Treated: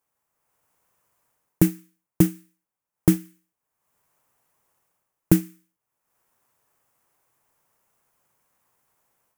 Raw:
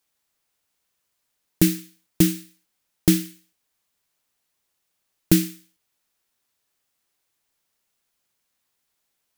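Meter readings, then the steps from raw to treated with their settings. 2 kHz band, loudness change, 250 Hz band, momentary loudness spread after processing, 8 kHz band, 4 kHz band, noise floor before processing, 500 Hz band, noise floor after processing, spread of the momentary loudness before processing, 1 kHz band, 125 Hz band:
-5.0 dB, -1.0 dB, -0.5 dB, 1 LU, -6.5 dB, -12.0 dB, -76 dBFS, 0.0 dB, -85 dBFS, 14 LU, +3.5 dB, +1.0 dB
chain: transient shaper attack +3 dB, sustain -7 dB; AGC gain up to 9 dB; graphic EQ 125/500/1000/4000 Hz +7/+4/+8/-11 dB; gain -4 dB

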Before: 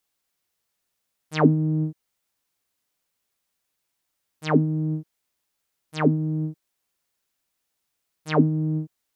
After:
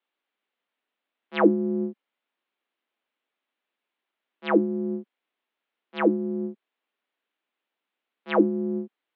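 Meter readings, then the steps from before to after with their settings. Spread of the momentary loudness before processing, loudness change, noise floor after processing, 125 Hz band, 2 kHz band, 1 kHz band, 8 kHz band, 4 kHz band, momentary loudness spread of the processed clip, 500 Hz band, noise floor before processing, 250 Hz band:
13 LU, -1.5 dB, under -85 dBFS, under -10 dB, +0.5 dB, 0.0 dB, n/a, -2.5 dB, 13 LU, +3.0 dB, -79 dBFS, -1.0 dB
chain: mistuned SSB +52 Hz 170–3400 Hz

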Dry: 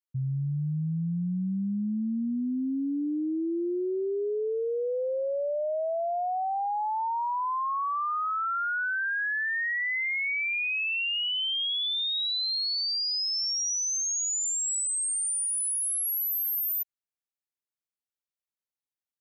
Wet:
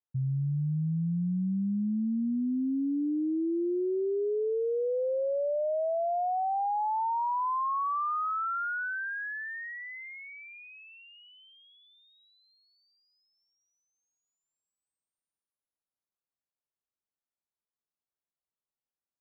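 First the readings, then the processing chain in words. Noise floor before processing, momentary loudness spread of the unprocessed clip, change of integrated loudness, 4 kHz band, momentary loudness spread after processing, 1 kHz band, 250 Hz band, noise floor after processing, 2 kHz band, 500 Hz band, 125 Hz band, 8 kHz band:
under -85 dBFS, 4 LU, -3.0 dB, under -30 dB, 10 LU, -0.5 dB, 0.0 dB, under -85 dBFS, -8.5 dB, 0.0 dB, n/a, under -40 dB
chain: LPF 1400 Hz 24 dB/oct

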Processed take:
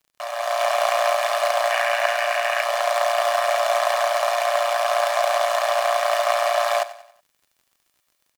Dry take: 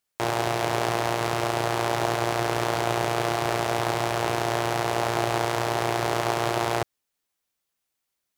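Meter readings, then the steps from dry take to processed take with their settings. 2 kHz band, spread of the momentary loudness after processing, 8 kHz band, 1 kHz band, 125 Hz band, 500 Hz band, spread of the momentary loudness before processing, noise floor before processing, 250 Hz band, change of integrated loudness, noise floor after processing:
+6.0 dB, 2 LU, +3.0 dB, +5.0 dB, under -40 dB, +6.0 dB, 1 LU, -81 dBFS, under -40 dB, +4.5 dB, -71 dBFS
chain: minimum comb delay 1.7 ms; spectral gain 1.7–2.62, 1400–3000 Hz +7 dB; AGC gain up to 12 dB; Chebyshev high-pass 580 Hz, order 6; crackle 50/s -46 dBFS; on a send: feedback echo 93 ms, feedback 44%, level -16 dB

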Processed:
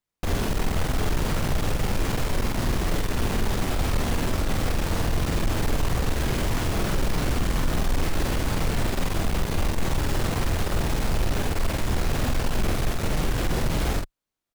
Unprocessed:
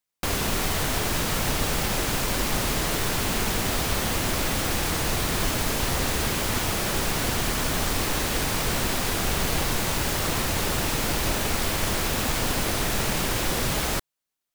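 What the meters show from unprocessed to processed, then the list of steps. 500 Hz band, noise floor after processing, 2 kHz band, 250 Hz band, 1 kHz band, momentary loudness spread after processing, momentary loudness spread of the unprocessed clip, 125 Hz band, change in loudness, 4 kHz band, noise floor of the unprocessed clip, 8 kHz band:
-0.5 dB, -33 dBFS, -4.5 dB, +1.0 dB, -2.5 dB, 1 LU, 0 LU, +3.5 dB, -2.0 dB, -6.5 dB, -85 dBFS, -8.5 dB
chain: tilt -2 dB/oct; soft clip -20.5 dBFS, distortion -10 dB; doubler 47 ms -4 dB

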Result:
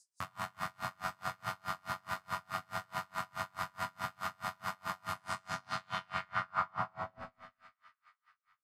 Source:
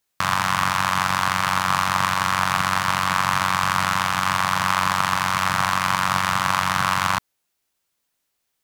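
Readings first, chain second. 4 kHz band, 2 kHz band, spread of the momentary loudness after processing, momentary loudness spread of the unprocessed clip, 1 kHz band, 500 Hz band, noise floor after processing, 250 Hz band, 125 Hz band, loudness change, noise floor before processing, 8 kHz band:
-22.5 dB, -20.0 dB, 5 LU, 1 LU, -19.0 dB, -13.5 dB, under -85 dBFS, -20.5 dB, -20.0 dB, -19.0 dB, -76 dBFS, -24.0 dB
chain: high shelf 2100 Hz -9.5 dB; limiter -15 dBFS, peak gain reduction 8.5 dB; band noise 4700–9600 Hz -59 dBFS; low-pass sweep 14000 Hz -> 150 Hz, 5.02–8.03; resonator bank E2 sus4, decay 0.36 s; on a send: split-band echo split 1600 Hz, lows 0.101 s, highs 0.372 s, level -7 dB; on the sum: dB-linear tremolo 4.7 Hz, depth 35 dB; gain +7.5 dB

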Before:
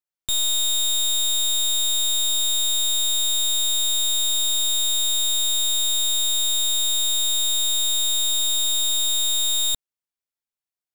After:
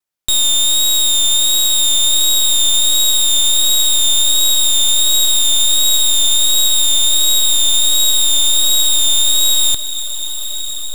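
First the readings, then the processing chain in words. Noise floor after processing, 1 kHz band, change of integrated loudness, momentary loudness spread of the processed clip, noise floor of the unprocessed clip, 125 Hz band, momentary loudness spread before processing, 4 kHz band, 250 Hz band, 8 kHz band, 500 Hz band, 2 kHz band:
-21 dBFS, +9.0 dB, +8.5 dB, 4 LU, under -85 dBFS, n/a, 0 LU, +9.0 dB, +8.0 dB, +9.0 dB, +9.0 dB, +9.0 dB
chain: vibrato 1.4 Hz 41 cents; on a send: diffused feedback echo 1.034 s, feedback 57%, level -11.5 dB; on the sum: gain +8.5 dB

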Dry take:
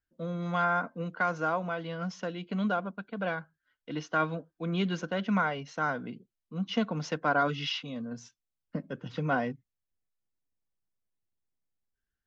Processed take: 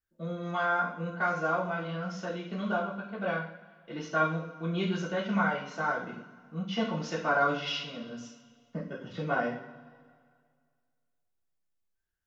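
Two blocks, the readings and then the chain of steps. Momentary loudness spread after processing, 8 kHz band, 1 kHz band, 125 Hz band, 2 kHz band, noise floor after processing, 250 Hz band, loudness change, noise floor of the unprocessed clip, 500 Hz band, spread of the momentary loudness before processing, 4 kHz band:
15 LU, n/a, +0.5 dB, -1.0 dB, +1.0 dB, -78 dBFS, -1.5 dB, +0.5 dB, under -85 dBFS, +1.0 dB, 12 LU, -0.5 dB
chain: two-slope reverb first 0.49 s, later 2 s, from -18 dB, DRR -5.5 dB; gain -6 dB

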